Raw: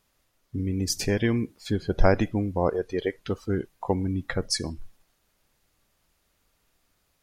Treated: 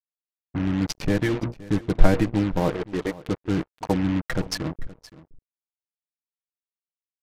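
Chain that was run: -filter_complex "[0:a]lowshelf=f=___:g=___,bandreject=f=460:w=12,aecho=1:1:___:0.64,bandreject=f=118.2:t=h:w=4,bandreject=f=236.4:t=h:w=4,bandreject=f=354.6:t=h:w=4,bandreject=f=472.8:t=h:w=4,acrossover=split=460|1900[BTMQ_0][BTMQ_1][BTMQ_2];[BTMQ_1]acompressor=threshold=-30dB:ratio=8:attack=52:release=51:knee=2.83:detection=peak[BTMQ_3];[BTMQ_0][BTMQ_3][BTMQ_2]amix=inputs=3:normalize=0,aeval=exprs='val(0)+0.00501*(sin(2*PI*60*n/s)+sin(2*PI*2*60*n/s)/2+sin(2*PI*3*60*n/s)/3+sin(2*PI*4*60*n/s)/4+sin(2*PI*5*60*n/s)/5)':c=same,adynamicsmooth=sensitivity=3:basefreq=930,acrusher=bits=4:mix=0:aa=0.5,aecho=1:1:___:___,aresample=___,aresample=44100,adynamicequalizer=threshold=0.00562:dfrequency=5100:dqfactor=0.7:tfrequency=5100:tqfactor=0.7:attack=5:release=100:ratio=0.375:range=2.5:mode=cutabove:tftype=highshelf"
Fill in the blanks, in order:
480, 3.5, 6.4, 520, 0.106, 32000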